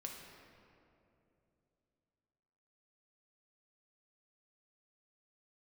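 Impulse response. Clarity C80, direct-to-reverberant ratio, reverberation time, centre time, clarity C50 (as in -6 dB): 4.0 dB, 0.0 dB, 2.8 s, 83 ms, 2.5 dB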